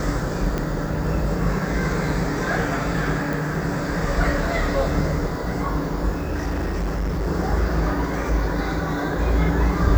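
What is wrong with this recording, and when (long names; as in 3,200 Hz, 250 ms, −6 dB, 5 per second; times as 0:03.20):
0:00.58: click −12 dBFS
0:03.33: click
0:06.15–0:07.28: clipping −20.5 dBFS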